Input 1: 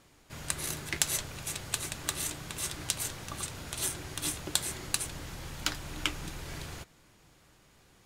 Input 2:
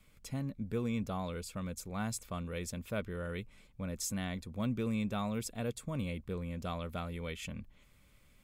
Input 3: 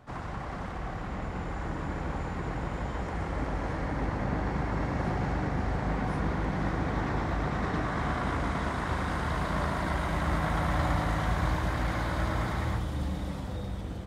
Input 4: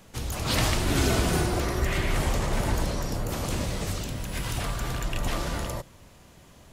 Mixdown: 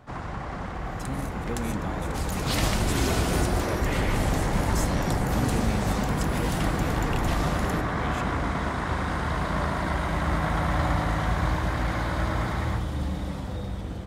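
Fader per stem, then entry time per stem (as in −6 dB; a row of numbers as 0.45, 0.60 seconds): −12.5, +1.5, +3.0, −2.0 decibels; 0.55, 0.75, 0.00, 2.00 seconds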